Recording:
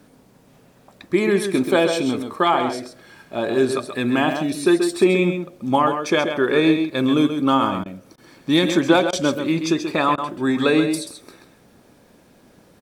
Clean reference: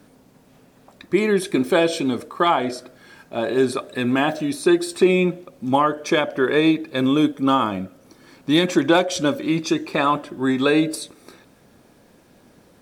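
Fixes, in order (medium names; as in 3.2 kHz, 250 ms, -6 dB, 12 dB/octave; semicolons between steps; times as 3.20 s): interpolate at 7.84/8.16/9.11/10.16 s, 17 ms; inverse comb 133 ms -8 dB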